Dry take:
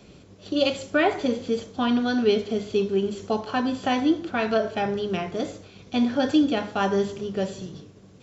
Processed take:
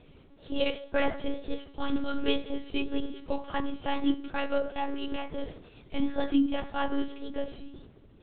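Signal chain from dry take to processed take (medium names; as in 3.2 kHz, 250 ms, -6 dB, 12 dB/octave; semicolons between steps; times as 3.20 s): wow and flutter 130 cents; monotone LPC vocoder at 8 kHz 280 Hz; trim -5 dB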